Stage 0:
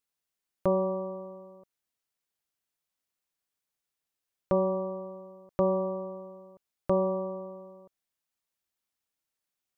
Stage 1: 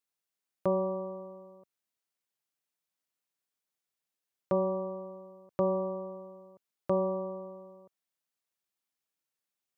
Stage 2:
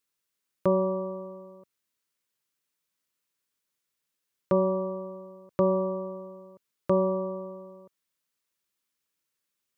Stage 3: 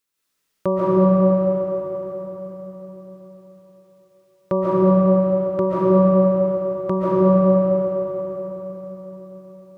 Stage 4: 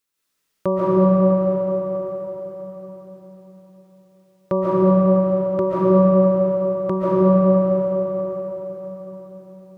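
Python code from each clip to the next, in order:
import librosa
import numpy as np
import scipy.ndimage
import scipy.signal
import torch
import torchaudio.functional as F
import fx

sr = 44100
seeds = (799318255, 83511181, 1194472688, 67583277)

y1 = scipy.signal.sosfilt(scipy.signal.butter(2, 110.0, 'highpass', fs=sr, output='sos'), x)
y1 = y1 * 10.0 ** (-2.5 / 20.0)
y2 = fx.peak_eq(y1, sr, hz=730.0, db=-13.0, octaves=0.27)
y2 = y2 * 10.0 ** (6.0 / 20.0)
y3 = fx.rev_freeverb(y2, sr, rt60_s=4.6, hf_ratio=0.75, predelay_ms=100, drr_db=-10.0)
y3 = y3 * 10.0 ** (2.5 / 20.0)
y4 = fx.echo_feedback(y3, sr, ms=650, feedback_pct=37, wet_db=-16.5)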